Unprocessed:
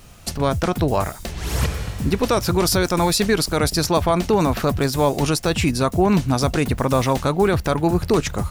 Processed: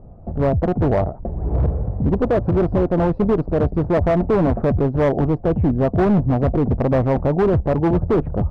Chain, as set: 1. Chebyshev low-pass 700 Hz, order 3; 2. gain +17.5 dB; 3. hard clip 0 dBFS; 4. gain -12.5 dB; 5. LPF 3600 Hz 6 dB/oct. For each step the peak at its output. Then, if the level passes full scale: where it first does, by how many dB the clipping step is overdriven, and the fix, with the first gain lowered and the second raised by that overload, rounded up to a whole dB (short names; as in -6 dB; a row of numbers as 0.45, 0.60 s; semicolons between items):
-7.5, +10.0, 0.0, -12.5, -12.5 dBFS; step 2, 10.0 dB; step 2 +7.5 dB, step 4 -2.5 dB